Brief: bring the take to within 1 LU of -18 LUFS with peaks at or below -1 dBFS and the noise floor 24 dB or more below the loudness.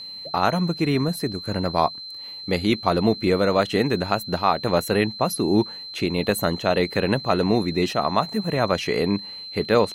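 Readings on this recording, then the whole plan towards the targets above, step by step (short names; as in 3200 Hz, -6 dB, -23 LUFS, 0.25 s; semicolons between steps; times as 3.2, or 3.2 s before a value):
steady tone 4100 Hz; tone level -34 dBFS; loudness -22.5 LUFS; peak -4.5 dBFS; loudness target -18.0 LUFS
-> notch 4100 Hz, Q 30; gain +4.5 dB; limiter -1 dBFS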